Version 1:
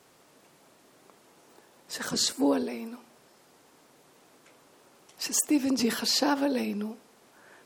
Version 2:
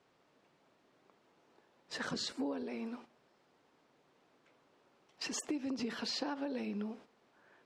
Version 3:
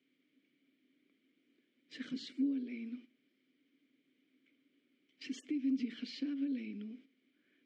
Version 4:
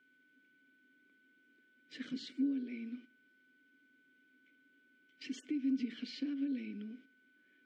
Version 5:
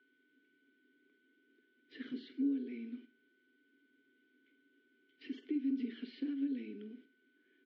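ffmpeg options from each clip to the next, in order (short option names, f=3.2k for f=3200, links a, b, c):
-af "lowpass=4k,agate=range=-9dB:threshold=-50dB:ratio=16:detection=peak,acompressor=threshold=-34dB:ratio=6,volume=-1.5dB"
-filter_complex "[0:a]asplit=3[a][b][c];[a]bandpass=f=270:t=q:w=8,volume=0dB[d];[b]bandpass=f=2.29k:t=q:w=8,volume=-6dB[e];[c]bandpass=f=3.01k:t=q:w=8,volume=-9dB[f];[d][e][f]amix=inputs=3:normalize=0,highshelf=f=5.5k:g=6,volume=6.5dB"
-af "aeval=exprs='val(0)+0.000398*sin(2*PI*1500*n/s)':c=same"
-filter_complex "[0:a]acrossover=split=2900[a][b];[b]acompressor=threshold=-59dB:ratio=4:attack=1:release=60[c];[a][c]amix=inputs=2:normalize=0,highpass=150,equalizer=f=180:t=q:w=4:g=-9,equalizer=f=400:t=q:w=4:g=9,equalizer=f=590:t=q:w=4:g=-9,equalizer=f=1.2k:t=q:w=4:g=-5,equalizer=f=2.4k:t=q:w=4:g=-6,lowpass=f=4k:w=0.5412,lowpass=f=4k:w=1.3066,aecho=1:1:21|47:0.158|0.237"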